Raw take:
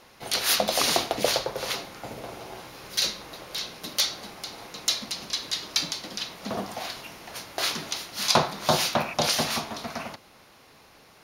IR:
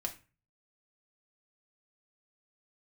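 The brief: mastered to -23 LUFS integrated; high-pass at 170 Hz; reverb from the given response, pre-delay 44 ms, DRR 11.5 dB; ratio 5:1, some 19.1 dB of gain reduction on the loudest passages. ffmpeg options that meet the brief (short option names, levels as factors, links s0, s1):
-filter_complex "[0:a]highpass=170,acompressor=threshold=0.01:ratio=5,asplit=2[s0][s1];[1:a]atrim=start_sample=2205,adelay=44[s2];[s1][s2]afir=irnorm=-1:irlink=0,volume=0.251[s3];[s0][s3]amix=inputs=2:normalize=0,volume=7.94"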